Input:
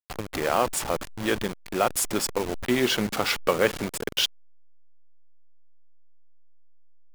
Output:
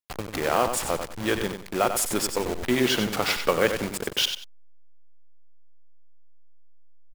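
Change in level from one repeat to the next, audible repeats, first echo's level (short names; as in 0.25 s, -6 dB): -12.5 dB, 2, -8.0 dB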